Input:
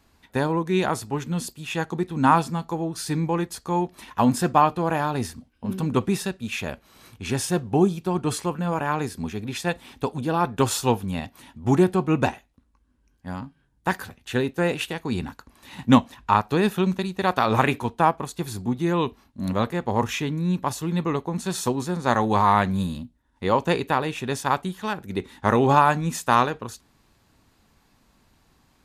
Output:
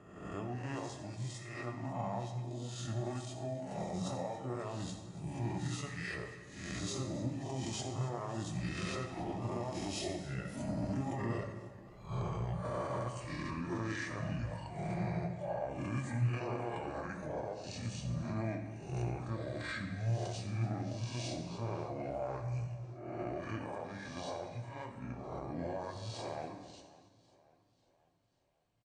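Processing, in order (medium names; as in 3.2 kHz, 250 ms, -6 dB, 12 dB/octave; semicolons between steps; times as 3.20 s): reverse spectral sustain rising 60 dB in 1.14 s; Doppler pass-by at 12.16 s, 24 m/s, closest 13 m; high-pass 48 Hz 12 dB/octave; reverb removal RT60 1.5 s; peaking EQ 80 Hz -4 dB 0.59 oct; compression 5:1, threshold -42 dBFS, peak gain reduction 19 dB; peak limiter -39 dBFS, peak gain reduction 10.5 dB; pitch shift -6.5 st; delay 279 ms -18.5 dB; reverberation RT60 1.2 s, pre-delay 4 ms, DRR 2 dB; modulated delay 545 ms, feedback 47%, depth 97 cents, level -20.5 dB; trim +8 dB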